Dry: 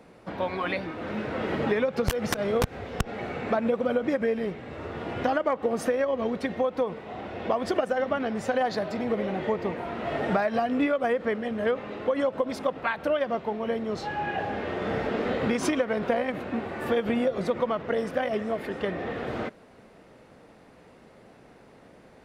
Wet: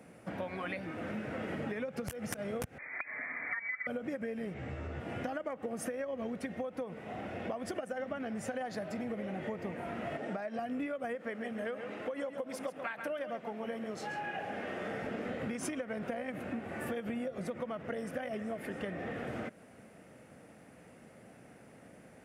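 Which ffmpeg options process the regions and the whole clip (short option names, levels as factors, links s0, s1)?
-filter_complex "[0:a]asettb=1/sr,asplit=3[s0][s1][s2];[s0]atrim=end=2.784[s3];[s1]atrim=start=2.78:end=3.87,asetpts=PTS-STARTPTS,afade=t=in:d=0.004:c=qsin,afade=t=out:st=1.086:d=0.004:c=qsin,lowshelf=f=230:g=-11,lowpass=f=2100:t=q:w=0.5098,lowpass=f=2100:t=q:w=0.6013,lowpass=f=2100:t=q:w=0.9,lowpass=f=2100:t=q:w=2.563,afreqshift=-2500[s4];[s2]atrim=start=3.866[s5];[s3][s4]acrossfade=d=0.004:c1=hsin:c2=qsin[s6];[s6][s5]acrossfade=d=0.004:c1=qsin:c2=hsin,asettb=1/sr,asplit=3[s7][s8][s9];[s7]atrim=end=4.544[s10];[s8]atrim=start=4.54:end=5,asetpts=PTS-STARTPTS,afade=t=in:d=0.004:c=qsin,afade=t=out:st=0.456:d=0.004:c=qsin,lowpass=f=7700:w=0.5412,lowpass=f=7700:w=1.3066,equalizer=f=84:w=2:g=12,asplit=2[s11][s12];[s12]adelay=15,volume=0.794[s13];[s11][s13]amix=inputs=2:normalize=0,atrim=end_sample=20286[s14];[s9]atrim=start=4.996[s15];[s10][s14]acrossfade=d=0.004:c1=hsin:c2=qsin[s16];[s16][s15]acrossfade=d=0.004:c1=qsin:c2=hsin,asettb=1/sr,asplit=3[s17][s18][s19];[s17]atrim=end=10.174[s20];[s18]atrim=start=10.17:end=10.59,asetpts=PTS-STARTPTS,afade=t=in:d=0.004:c=qsin,afade=t=out:st=0.416:d=0.004:c=qsin,highpass=240,lowpass=6800,equalizer=f=1700:w=0.42:g=-5.5[s21];[s19]atrim=start=10.586[s22];[s20][s21]acrossfade=d=0.004:c1=hsin:c2=qsin[s23];[s23][s22]acrossfade=d=0.004:c1=qsin:c2=hsin,asettb=1/sr,asplit=3[s24][s25][s26];[s24]atrim=end=11.154[s27];[s25]atrim=start=11.15:end=15.02,asetpts=PTS-STARTPTS,afade=t=in:d=0.004:c=qsin,afade=t=out:st=3.866:d=0.004:c=qsin,highpass=f=300:p=1,aecho=1:1:135:0.316,atrim=end_sample=170667[s28];[s26]atrim=start=15.016[s29];[s27][s28]acrossfade=d=0.004:c1=hsin:c2=qsin[s30];[s30][s29]acrossfade=d=0.004:c1=qsin:c2=hsin,equalizer=f=400:t=o:w=0.67:g=-6,equalizer=f=1000:t=o:w=0.67:g=-8,equalizer=f=4000:t=o:w=0.67:g=-10,equalizer=f=10000:t=o:w=0.67:g=7,acompressor=threshold=0.0158:ratio=4,highpass=87"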